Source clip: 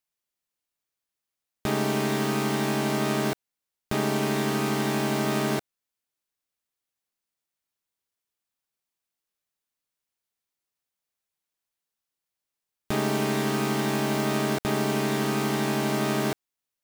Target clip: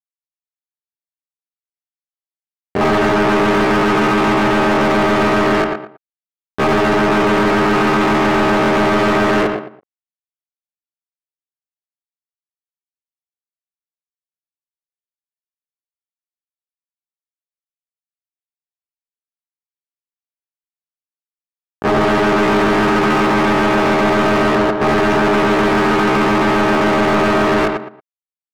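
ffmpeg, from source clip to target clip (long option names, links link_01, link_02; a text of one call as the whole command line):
ffmpeg -i in.wav -filter_complex "[0:a]afwtdn=0.0251,highshelf=frequency=6300:gain=-5.5,acrusher=bits=4:mix=0:aa=0.5,asplit=2[link_01][link_02];[link_02]adelay=67,lowpass=frequency=2500:poles=1,volume=-11dB,asplit=2[link_03][link_04];[link_04]adelay=67,lowpass=frequency=2500:poles=1,volume=0.24,asplit=2[link_05][link_06];[link_06]adelay=67,lowpass=frequency=2500:poles=1,volume=0.24[link_07];[link_03][link_05][link_07]amix=inputs=3:normalize=0[link_08];[link_01][link_08]amix=inputs=2:normalize=0,atempo=0.59,asplit=2[link_09][link_10];[link_10]highpass=frequency=720:poles=1,volume=26dB,asoftclip=type=tanh:threshold=-13.5dB[link_11];[link_09][link_11]amix=inputs=2:normalize=0,lowpass=frequency=1700:poles=1,volume=-6dB,volume=7.5dB" out.wav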